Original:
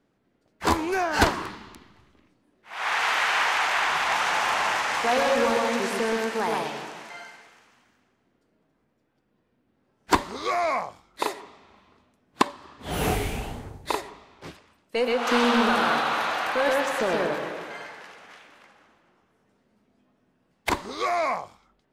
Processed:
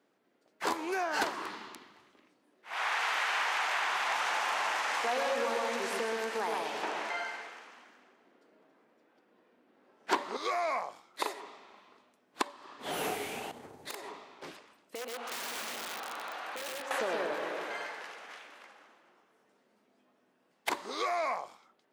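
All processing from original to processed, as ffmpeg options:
ffmpeg -i in.wav -filter_complex "[0:a]asettb=1/sr,asplit=3[link_01][link_02][link_03];[link_01]atrim=end=6.834[link_04];[link_02]atrim=start=6.83:end=10.37,asetpts=PTS-STARTPTS,afade=type=in:duration=0.004:curve=qsin,afade=type=out:start_time=3.536:duration=0.004:curve=qsin,highpass=170,highshelf=frequency=5300:gain=-11,aeval=exprs='0.447*sin(PI/2*1.58*val(0)/0.447)':channel_layout=same[link_05];[link_03]atrim=start=10.366[link_06];[link_04][link_05]acrossfade=duration=0.004:curve1=hsin:curve2=qsin[link_07];[link_07][link_06]acrossfade=duration=0.004:curve1=qsin:curve2=hsin,asettb=1/sr,asplit=3[link_08][link_09][link_10];[link_08]atrim=end=13.514[link_11];[link_09]atrim=start=13.51:end=16.91,asetpts=PTS-STARTPTS,afade=type=in:duration=0.004:curve=qsin,afade=type=out:start_time=3.396:duration=0.004:curve=qsin,lowshelf=frequency=320:gain=4.5,aeval=exprs='(mod(6.31*val(0)+1,2)-1)/6.31':channel_layout=same,acompressor=threshold=-37dB:ratio=10:attack=3.2:release=140:knee=1:detection=peak[link_12];[link_10]atrim=start=16.906[link_13];[link_11][link_12]acrossfade=duration=0.004:curve1=hsin:curve2=qsin[link_14];[link_14][link_13]acrossfade=duration=0.004:curve1=qsin:curve2=hsin,acompressor=threshold=-32dB:ratio=2.5,highpass=330" out.wav

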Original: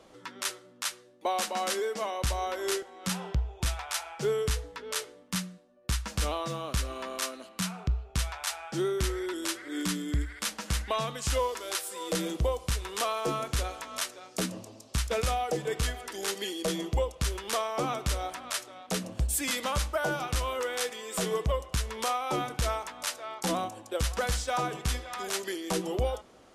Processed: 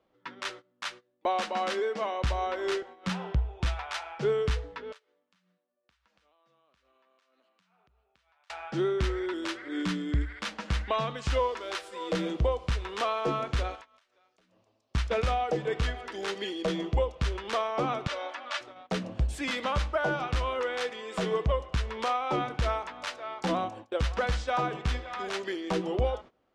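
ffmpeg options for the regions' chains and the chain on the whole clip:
ffmpeg -i in.wav -filter_complex "[0:a]asettb=1/sr,asplit=3[link_01][link_02][link_03];[link_01]atrim=end=4.924[link_04];[link_02]atrim=start=4.92:end=8.5,asetpts=PTS-STARTPTS,afade=type=in:duration=0.004:curve=qsin,afade=type=out:start_time=3.576:duration=0.004:curve=qsin,highpass=frequency=550:poles=1,acompressor=threshold=-47dB:ratio=16:attack=3.2:release=140:knee=1:detection=peak[link_05];[link_03]atrim=start=8.496[link_06];[link_04][link_05]acrossfade=duration=0.004:curve1=hsin:curve2=qsin[link_07];[link_07][link_06]acrossfade=duration=0.004:curve1=qsin:curve2=hsin,asettb=1/sr,asplit=3[link_08][link_09][link_10];[link_08]atrim=end=13.754[link_11];[link_09]atrim=start=13.75:end=14.91,asetpts=PTS-STARTPTS,afade=type=in:duration=0.004:curve=qsin,afade=type=out:start_time=1.156:duration=0.004:curve=qsin,equalizer=frequency=190:width=0.49:gain=-9.5,acompressor=threshold=-44dB:ratio=16:attack=3.2:release=140:knee=1:detection=peak[link_12];[link_10]atrim=start=14.906[link_13];[link_11][link_12]acrossfade=duration=0.004:curve1=hsin:curve2=qsin[link_14];[link_14][link_13]acrossfade=duration=0.004:curve1=qsin:curve2=hsin,asettb=1/sr,asplit=3[link_15][link_16][link_17];[link_15]atrim=end=18.074[link_18];[link_16]atrim=start=18.07:end=18.61,asetpts=PTS-STARTPTS,afade=type=in:duration=0.004:curve=qsin,afade=type=out:start_time=0.536:duration=0.004:curve=qsin,highpass=550,lowpass=6300,aecho=1:1:3.5:0.8,atrim=end_sample=23814[link_19];[link_17]atrim=start=18.606[link_20];[link_18][link_19]acrossfade=duration=0.004:curve1=hsin:curve2=qsin[link_21];[link_21][link_20]acrossfade=duration=0.004:curve1=qsin:curve2=hsin,lowpass=3300,agate=range=-18dB:threshold=-46dB:ratio=16:detection=peak,volume=1.5dB" out.wav

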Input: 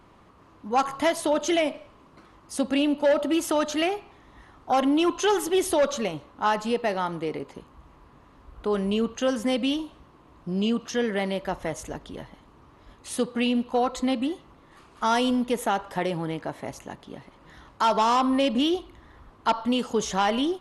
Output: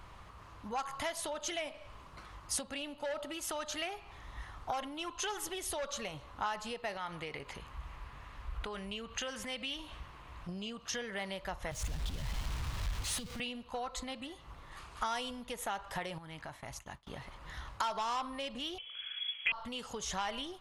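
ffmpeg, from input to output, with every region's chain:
ffmpeg -i in.wav -filter_complex "[0:a]asettb=1/sr,asplit=3[link_01][link_02][link_03];[link_01]atrim=end=6.974[link_04];[link_02]atrim=start=6.97:end=10.49,asetpts=PTS-STARTPTS,afade=type=in:duration=0.004:curve=qsin,afade=type=out:start_time=3.516:duration=0.004:curve=qsin,equalizer=frequency=2300:width_type=o:width=1.3:gain=6,acompressor=threshold=-44dB:ratio=1.5:attack=3.2:release=140:knee=1:detection=peak[link_05];[link_03]atrim=start=10.486[link_06];[link_04][link_05]acrossfade=duration=0.004:curve1=hsin:curve2=qsin[link_07];[link_07][link_06]acrossfade=duration=0.004:curve1=qsin:curve2=hsin,asettb=1/sr,asplit=3[link_08][link_09][link_10];[link_08]atrim=end=11.714[link_11];[link_09]atrim=start=11.71:end=13.4,asetpts=PTS-STARTPTS,afade=type=in:duration=0.004:curve=qsin,afade=type=out:start_time=1.686:duration=0.004:curve=qsin,aeval=exprs='val(0)+0.5*0.0316*sgn(val(0))':channel_layout=same,lowpass=frequency=2800:poles=1,acrossover=split=230|3000[link_12][link_13][link_14];[link_13]acompressor=threshold=-44dB:ratio=6:attack=3.2:release=140:knee=2.83:detection=peak[link_15];[link_12][link_15][link_14]amix=inputs=3:normalize=0[link_16];[link_10]atrim=start=13.396[link_17];[link_11][link_16]acrossfade=duration=0.004:curve1=hsin:curve2=qsin[link_18];[link_18][link_17]acrossfade=duration=0.004:curve1=qsin:curve2=hsin,asettb=1/sr,asplit=3[link_19][link_20][link_21];[link_19]atrim=end=16.184[link_22];[link_20]atrim=start=16.18:end=17.07,asetpts=PTS-STARTPTS,afade=type=in:duration=0.004:curve=qsin,afade=type=out:start_time=0.886:duration=0.004:curve=qsin,agate=range=-33dB:threshold=-38dB:ratio=3:release=100:detection=peak,equalizer=frequency=480:width_type=o:width=0.58:gain=-8,acompressor=threshold=-41dB:ratio=4:attack=3.2:release=140:knee=1:detection=peak[link_23];[link_21]atrim=start=17.066[link_24];[link_22][link_23]acrossfade=duration=0.004:curve1=hsin:curve2=qsin[link_25];[link_25][link_24]acrossfade=duration=0.004:curve1=qsin:curve2=hsin,asettb=1/sr,asplit=3[link_26][link_27][link_28];[link_26]atrim=end=18.784[link_29];[link_27]atrim=start=18.78:end=19.52,asetpts=PTS-STARTPTS,afade=type=in:duration=0.004:curve=qsin,afade=type=out:start_time=0.736:duration=0.004:curve=qsin,asubboost=boost=11:cutoff=140,lowpass=frequency=2900:width_type=q:width=0.5098,lowpass=frequency=2900:width_type=q:width=0.6013,lowpass=frequency=2900:width_type=q:width=0.9,lowpass=frequency=2900:width_type=q:width=2.563,afreqshift=-3400[link_30];[link_28]atrim=start=19.516[link_31];[link_29][link_30]acrossfade=duration=0.004:curve1=hsin:curve2=qsin[link_32];[link_32][link_31]acrossfade=duration=0.004:curve1=qsin:curve2=hsin,lowshelf=frequency=110:gain=6.5,acompressor=threshold=-35dB:ratio=6,equalizer=frequency=280:width=0.68:gain=-14.5,volume=4.5dB" out.wav

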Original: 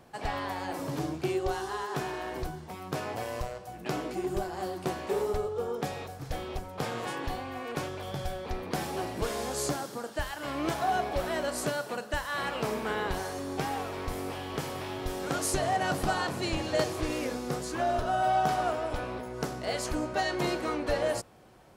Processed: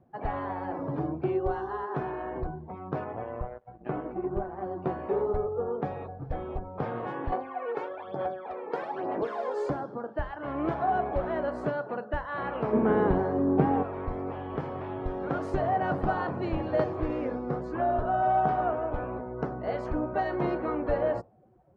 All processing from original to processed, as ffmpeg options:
ffmpeg -i in.wav -filter_complex "[0:a]asettb=1/sr,asplit=3[link_01][link_02][link_03];[link_01]atrim=end=3.044[link_04];[link_02]atrim=start=3.04:end=4.71,asetpts=PTS-STARTPTS,afade=type=in:duration=0.004:curve=qsin,afade=type=out:start_time=1.666:duration=0.004:curve=qsin,acrossover=split=3600[link_05][link_06];[link_06]acompressor=threshold=-55dB:ratio=4:attack=1:release=60[link_07];[link_05][link_07]amix=inputs=2:normalize=0,aeval=exprs='sgn(val(0))*max(abs(val(0))-0.00562,0)':channel_layout=same[link_08];[link_03]atrim=start=4.706[link_09];[link_04][link_08]acrossfade=duration=0.004:curve1=hsin:curve2=qsin[link_10];[link_10][link_09]acrossfade=duration=0.004:curve1=qsin:curve2=hsin,asettb=1/sr,asplit=3[link_11][link_12][link_13];[link_11]atrim=end=7.324[link_14];[link_12]atrim=start=7.32:end=9.7,asetpts=PTS-STARTPTS,afade=type=in:duration=0.004:curve=qsin,afade=type=out:start_time=2.376:duration=0.004:curve=qsin,highpass=370,aphaser=in_gain=1:out_gain=1:delay=2.3:decay=0.62:speed=1.1:type=sinusoidal[link_15];[link_13]atrim=start=9.696[link_16];[link_14][link_15]acrossfade=duration=0.004:curve1=hsin:curve2=qsin[link_17];[link_17][link_16]acrossfade=duration=0.004:curve1=qsin:curve2=hsin,asettb=1/sr,asplit=3[link_18][link_19][link_20];[link_18]atrim=end=12.734[link_21];[link_19]atrim=start=12.73:end=13.83,asetpts=PTS-STARTPTS,afade=type=in:duration=0.004:curve=qsin,afade=type=out:start_time=1.096:duration=0.004:curve=qsin,lowpass=5600,equalizer=frequency=230:width=0.49:gain=11.5[link_22];[link_20]atrim=start=13.826[link_23];[link_21][link_22]acrossfade=duration=0.004:curve1=hsin:curve2=qsin[link_24];[link_24][link_23]acrossfade=duration=0.004:curve1=qsin:curve2=hsin,afftdn=noise_reduction=16:noise_floor=-47,lowpass=1300,volume=2dB" out.wav

